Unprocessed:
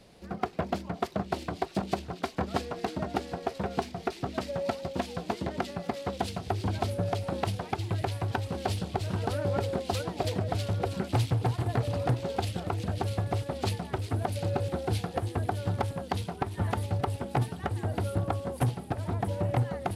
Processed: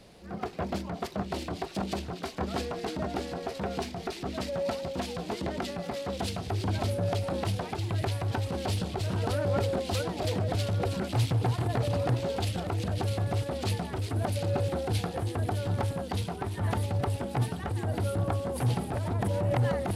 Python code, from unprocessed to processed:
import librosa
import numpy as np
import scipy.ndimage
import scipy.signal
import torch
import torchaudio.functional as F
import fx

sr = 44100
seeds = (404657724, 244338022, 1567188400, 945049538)

y = fx.transient(x, sr, attack_db=-8, sustain_db=fx.steps((0.0, 2.0), (18.54, 7.0)))
y = F.gain(torch.from_numpy(y), 2.5).numpy()